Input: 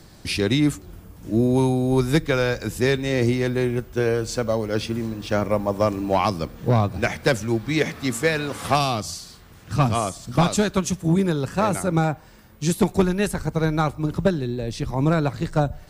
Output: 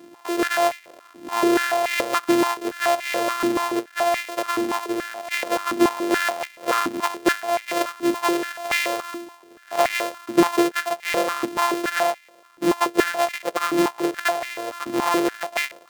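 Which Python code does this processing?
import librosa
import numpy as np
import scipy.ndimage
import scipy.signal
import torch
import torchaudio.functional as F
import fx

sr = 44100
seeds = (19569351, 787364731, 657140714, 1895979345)

y = np.r_[np.sort(x[:len(x) // 128 * 128].reshape(-1, 128), axis=1).ravel(), x[len(x) // 128 * 128:]]
y = fx.filter_held_highpass(y, sr, hz=7.0, low_hz=300.0, high_hz=2100.0)
y = y * librosa.db_to_amplitude(-3.0)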